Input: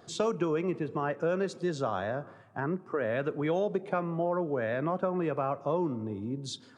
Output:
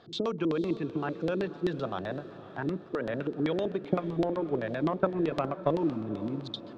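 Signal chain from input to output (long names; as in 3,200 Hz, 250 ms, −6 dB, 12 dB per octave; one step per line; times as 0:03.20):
0:03.88–0:05.78: transient designer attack +9 dB, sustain −10 dB
auto-filter low-pass square 7.8 Hz 320–3,800 Hz
feedback delay with all-pass diffusion 517 ms, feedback 53%, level −15 dB
level −2 dB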